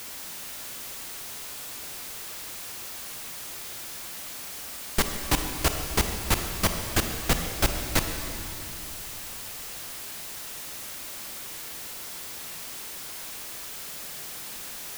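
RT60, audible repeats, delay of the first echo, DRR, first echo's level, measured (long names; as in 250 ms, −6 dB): 2.9 s, no echo audible, no echo audible, 5.0 dB, no echo audible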